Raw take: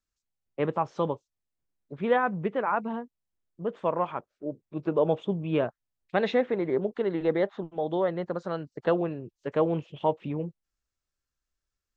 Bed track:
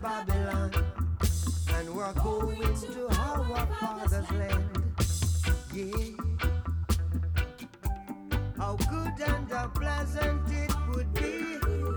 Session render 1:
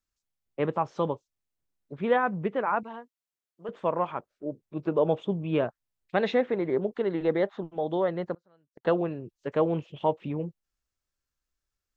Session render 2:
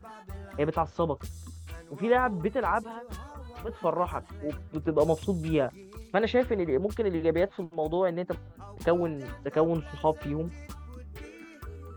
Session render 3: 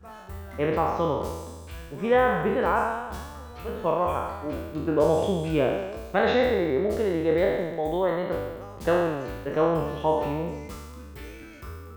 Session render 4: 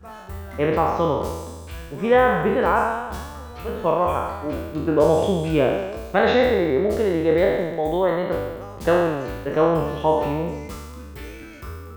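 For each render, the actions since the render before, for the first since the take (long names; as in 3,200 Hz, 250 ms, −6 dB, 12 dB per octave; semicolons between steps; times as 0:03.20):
0:02.83–0:03.69: high-pass filter 940 Hz 6 dB per octave; 0:08.34–0:08.85: gate with flip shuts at −33 dBFS, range −31 dB
mix in bed track −13.5 dB
peak hold with a decay on every bin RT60 1.28 s
level +4.5 dB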